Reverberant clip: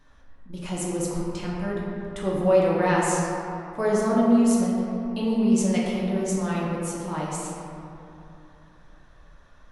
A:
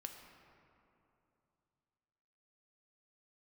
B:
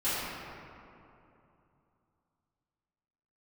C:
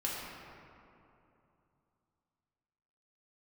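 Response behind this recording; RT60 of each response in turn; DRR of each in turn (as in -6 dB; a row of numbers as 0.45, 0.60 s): C; 2.9, 2.8, 2.8 s; 3.5, -15.0, -5.5 dB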